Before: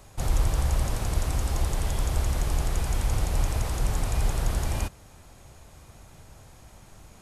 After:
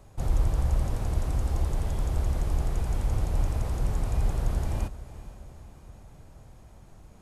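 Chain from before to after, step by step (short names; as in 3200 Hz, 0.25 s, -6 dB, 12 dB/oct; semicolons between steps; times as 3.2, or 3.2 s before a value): tilt shelf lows +5 dB, about 1100 Hz; diffused feedback echo 0.454 s, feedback 54%, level -15.5 dB; gain -5.5 dB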